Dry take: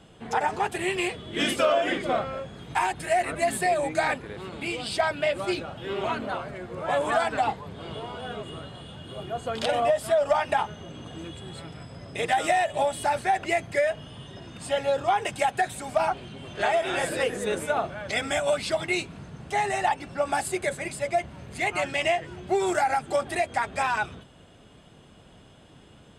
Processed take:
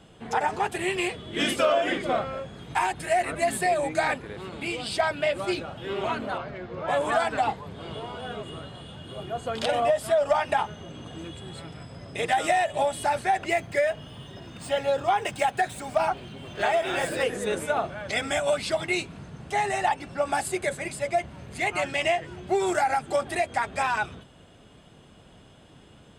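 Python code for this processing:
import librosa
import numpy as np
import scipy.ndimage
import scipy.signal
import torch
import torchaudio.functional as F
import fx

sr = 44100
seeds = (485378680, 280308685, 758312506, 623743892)

y = fx.lowpass(x, sr, hz=5500.0, slope=24, at=(6.38, 6.88))
y = fx.median_filter(y, sr, points=3, at=(13.5, 17.23))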